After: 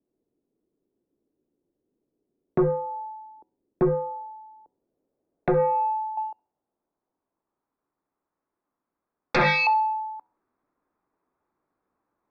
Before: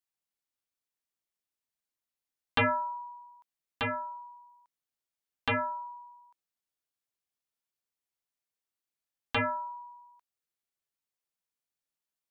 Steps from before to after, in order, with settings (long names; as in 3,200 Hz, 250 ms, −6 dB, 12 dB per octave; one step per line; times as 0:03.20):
high-pass filter 86 Hz
parametric band 400 Hz +11.5 dB 0.94 octaves
hum removal 210.3 Hz, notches 5
downward compressor 10 to 1, threshold −34 dBFS, peak gain reduction 15.5 dB
0:06.17–0:09.67: leveller curve on the samples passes 3
low-pass filter sweep 490 Hz → 1,200 Hz, 0:04.02–0:07.85
frequency shifter −98 Hz
sine wavefolder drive 12 dB, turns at −15 dBFS
Butterworth band-reject 3,000 Hz, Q 4.6
high-frequency loss of the air 130 metres
delay with a high-pass on its return 66 ms, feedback 38%, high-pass 1,700 Hz, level −18 dB